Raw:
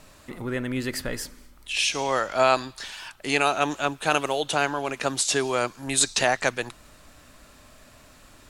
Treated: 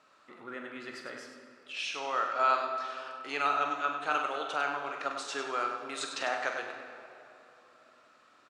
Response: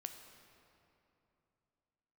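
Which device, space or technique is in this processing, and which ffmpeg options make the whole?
station announcement: -filter_complex "[0:a]highpass=320,lowpass=4800,equalizer=frequency=1300:width_type=o:width=0.39:gain=11,aecho=1:1:43.73|99.13:0.355|0.398[link_01];[1:a]atrim=start_sample=2205[link_02];[link_01][link_02]afir=irnorm=-1:irlink=0,volume=-8dB"

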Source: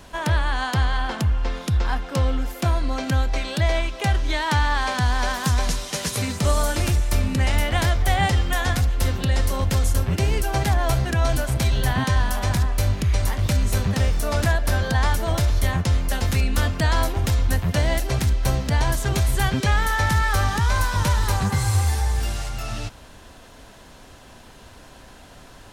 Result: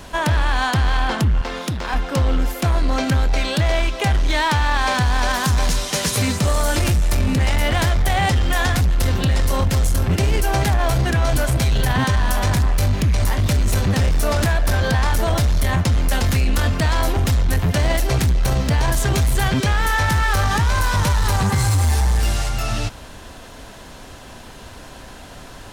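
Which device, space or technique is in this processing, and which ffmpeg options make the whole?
limiter into clipper: -filter_complex "[0:a]alimiter=limit=-15.5dB:level=0:latency=1:release=26,asoftclip=type=hard:threshold=-20dB,asettb=1/sr,asplit=3[link_01][link_02][link_03];[link_01]atrim=end=1.414[link_04];[link_02]atrim=start=1.41:end=1.94,asetpts=PTS-STARTPTS,afade=type=in:duration=0.004:curve=qsin,afade=type=out:start_time=0.526:duration=0.004:curve=qsin,highpass=frequency=220:poles=1[link_05];[link_03]atrim=start=1.936[link_06];[link_04][link_05]acrossfade=duration=0.004:curve1=hsin:curve2=qsin[link_07];[link_07][link_06]acrossfade=duration=0.004:curve1=qsin:curve2=hsin,volume=7dB"

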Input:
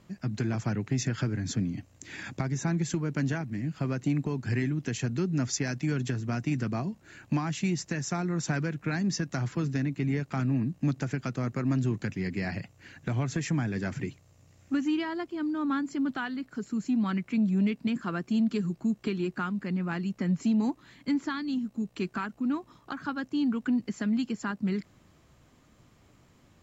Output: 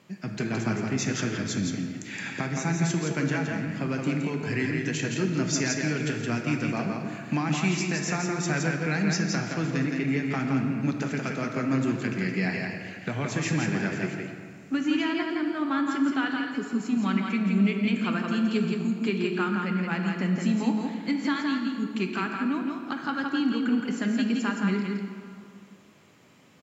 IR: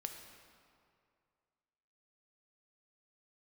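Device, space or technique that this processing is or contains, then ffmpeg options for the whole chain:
PA in a hall: -filter_complex "[0:a]highpass=180,equalizer=frequency=2500:width_type=o:width=0.84:gain=5,aecho=1:1:168:0.631[link_01];[1:a]atrim=start_sample=2205[link_02];[link_01][link_02]afir=irnorm=-1:irlink=0,volume=5.5dB"

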